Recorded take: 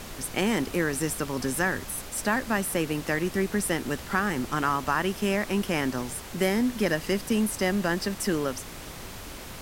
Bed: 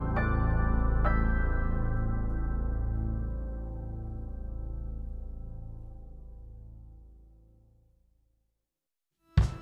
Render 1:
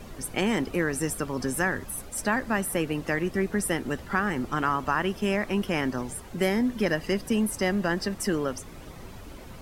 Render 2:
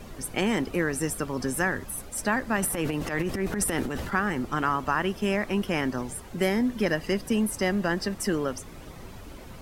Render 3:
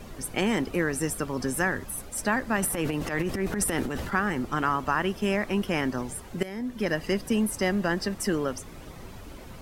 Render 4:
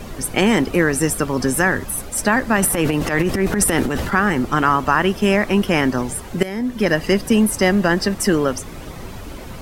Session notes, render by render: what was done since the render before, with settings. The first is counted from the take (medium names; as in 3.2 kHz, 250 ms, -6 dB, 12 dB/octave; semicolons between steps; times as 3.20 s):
noise reduction 11 dB, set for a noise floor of -41 dBFS
2.56–4.12 s: transient shaper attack -11 dB, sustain +9 dB
6.43–7.01 s: fade in, from -18 dB
trim +10 dB; peak limiter -3 dBFS, peak gain reduction 2 dB